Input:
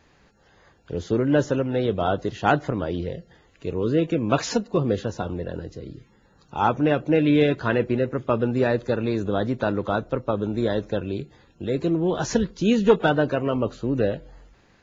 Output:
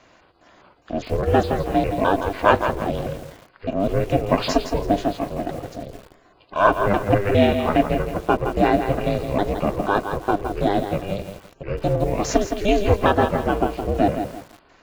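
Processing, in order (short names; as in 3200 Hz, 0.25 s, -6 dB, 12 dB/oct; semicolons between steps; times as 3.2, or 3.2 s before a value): trilling pitch shifter -7 st, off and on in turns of 0.204 s; HPF 180 Hz 12 dB/oct; bell 500 Hz +5.5 dB 0.35 oct; notches 50/100/150/200/250 Hz; small resonant body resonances 830/1300/2600 Hz, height 7 dB, ringing for 35 ms; in parallel at -6 dB: soft clip -35.5 dBFS, distortion -1 dB; on the sum: ring modulator 200 Hz; lo-fi delay 0.165 s, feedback 35%, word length 7-bit, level -7.5 dB; gain +4 dB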